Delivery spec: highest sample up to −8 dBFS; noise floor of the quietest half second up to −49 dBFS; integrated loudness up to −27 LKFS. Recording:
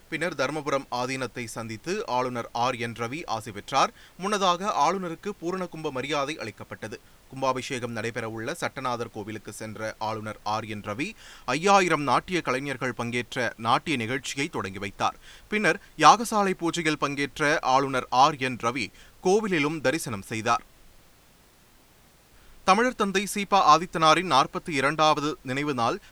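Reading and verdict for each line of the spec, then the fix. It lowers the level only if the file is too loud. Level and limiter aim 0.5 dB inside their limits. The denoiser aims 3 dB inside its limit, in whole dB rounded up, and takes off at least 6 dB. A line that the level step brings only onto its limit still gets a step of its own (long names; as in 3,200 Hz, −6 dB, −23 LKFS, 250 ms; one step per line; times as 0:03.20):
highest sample −3.0 dBFS: out of spec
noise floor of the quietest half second −57 dBFS: in spec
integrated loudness −26.0 LKFS: out of spec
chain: level −1.5 dB
brickwall limiter −8.5 dBFS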